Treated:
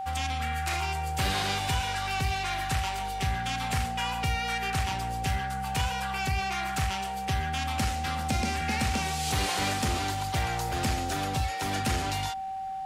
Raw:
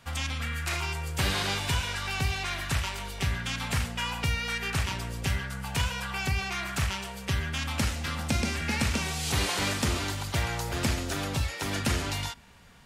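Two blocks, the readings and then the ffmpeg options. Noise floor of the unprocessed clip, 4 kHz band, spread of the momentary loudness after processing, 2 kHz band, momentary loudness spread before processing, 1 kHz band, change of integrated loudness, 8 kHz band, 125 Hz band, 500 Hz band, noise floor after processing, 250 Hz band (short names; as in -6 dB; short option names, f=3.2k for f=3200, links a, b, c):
-40 dBFS, -1.0 dB, 3 LU, -1.0 dB, 5 LU, +7.5 dB, +0.5 dB, -1.0 dB, -1.0 dB, -1.0 dB, -34 dBFS, -1.0 dB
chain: -af "asoftclip=type=tanh:threshold=-19dB,aeval=exprs='val(0)+0.0251*sin(2*PI*770*n/s)':c=same"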